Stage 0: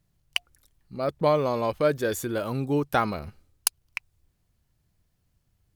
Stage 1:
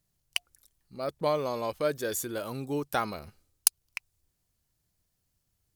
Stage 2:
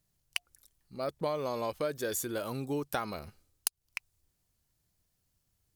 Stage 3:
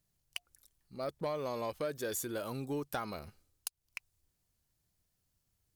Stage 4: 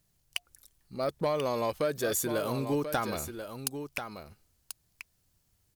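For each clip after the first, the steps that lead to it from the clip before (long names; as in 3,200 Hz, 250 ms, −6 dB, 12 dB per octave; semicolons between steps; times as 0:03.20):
bass and treble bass −4 dB, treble +8 dB; level −5.5 dB
downward compressor 5 to 1, threshold −29 dBFS, peak gain reduction 13 dB
soft clipping −23 dBFS, distortion −15 dB; level −2.5 dB
single-tap delay 1,037 ms −9 dB; level +7 dB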